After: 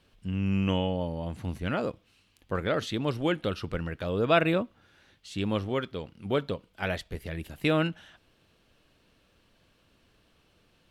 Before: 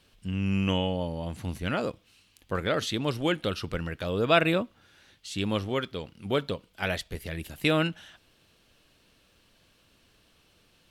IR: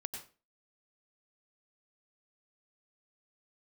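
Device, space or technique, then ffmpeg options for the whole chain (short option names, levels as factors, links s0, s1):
behind a face mask: -af "highshelf=f=3000:g=-8"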